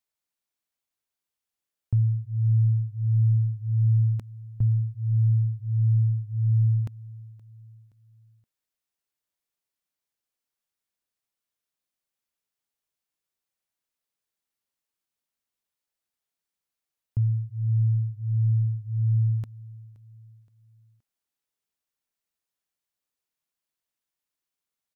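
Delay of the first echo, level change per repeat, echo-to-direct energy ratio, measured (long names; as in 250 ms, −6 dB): 522 ms, −7.0 dB, −21.0 dB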